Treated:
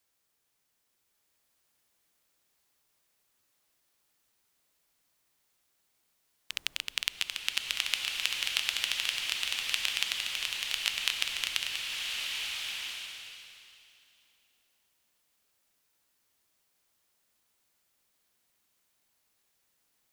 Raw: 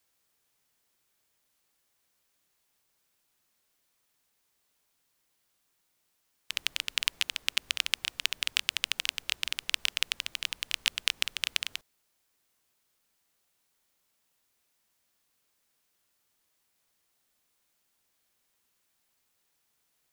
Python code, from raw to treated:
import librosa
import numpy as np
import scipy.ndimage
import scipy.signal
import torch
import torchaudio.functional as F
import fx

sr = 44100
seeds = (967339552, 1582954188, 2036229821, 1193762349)

y = fx.rev_bloom(x, sr, seeds[0], attack_ms=1330, drr_db=0.0)
y = F.gain(torch.from_numpy(y), -2.5).numpy()